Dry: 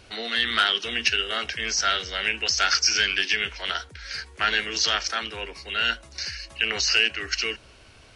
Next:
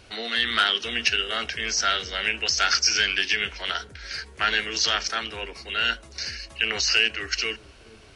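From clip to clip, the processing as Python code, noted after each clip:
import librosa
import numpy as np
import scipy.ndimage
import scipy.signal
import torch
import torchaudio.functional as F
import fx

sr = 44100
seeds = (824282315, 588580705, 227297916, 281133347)

y = fx.echo_wet_lowpass(x, sr, ms=430, feedback_pct=56, hz=450.0, wet_db=-13)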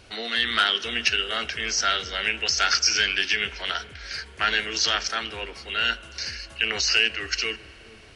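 y = fx.rev_spring(x, sr, rt60_s=3.9, pass_ms=(33,), chirp_ms=20, drr_db=18.0)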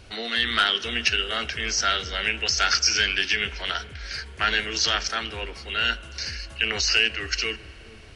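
y = fx.low_shelf(x, sr, hz=140.0, db=8.0)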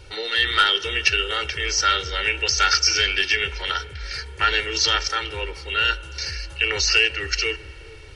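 y = x + 0.88 * np.pad(x, (int(2.2 * sr / 1000.0), 0))[:len(x)]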